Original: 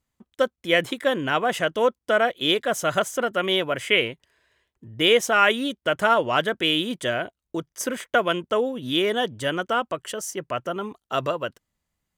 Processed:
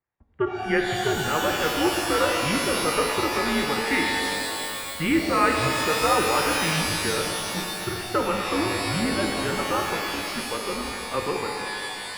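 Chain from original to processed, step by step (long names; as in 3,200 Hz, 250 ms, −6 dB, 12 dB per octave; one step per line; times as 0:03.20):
single-sideband voice off tune −150 Hz 210–2,500 Hz
reverb with rising layers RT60 2.8 s, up +12 semitones, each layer −2 dB, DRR 1.5 dB
level −4 dB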